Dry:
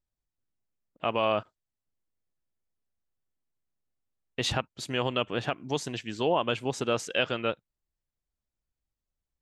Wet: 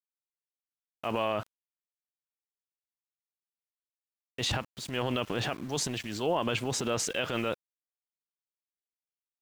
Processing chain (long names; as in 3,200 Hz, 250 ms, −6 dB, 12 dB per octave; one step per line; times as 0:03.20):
transient designer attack −6 dB, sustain +8 dB
centre clipping without the shift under −44.5 dBFS
brickwall limiter −18.5 dBFS, peak gain reduction 5 dB